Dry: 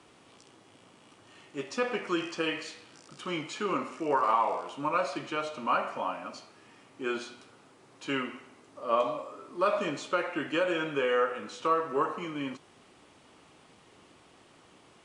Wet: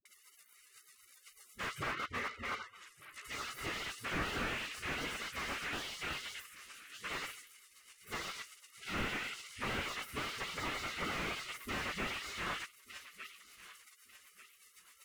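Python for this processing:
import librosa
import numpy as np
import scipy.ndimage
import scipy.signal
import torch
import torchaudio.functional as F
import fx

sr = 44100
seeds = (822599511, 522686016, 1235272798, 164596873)

p1 = fx.lower_of_two(x, sr, delay_ms=1.2)
p2 = fx.spec_gate(p1, sr, threshold_db=-25, keep='weak')
p3 = fx.band_shelf(p2, sr, hz=1700.0, db=11.0, octaves=1.7)
p4 = fx.env_lowpass_down(p3, sr, base_hz=2100.0, full_db=-50.0, at=(1.68, 3.27))
p5 = fx.rotary(p4, sr, hz=8.0)
p6 = fx.dispersion(p5, sr, late='highs', ms=54.0, hz=330.0)
p7 = fx.vibrato(p6, sr, rate_hz=4.0, depth_cents=54.0)
p8 = p7 + fx.echo_feedback(p7, sr, ms=1192, feedback_pct=29, wet_db=-23.0, dry=0)
p9 = fx.slew_limit(p8, sr, full_power_hz=3.3)
y = F.gain(torch.from_numpy(p9), 18.0).numpy()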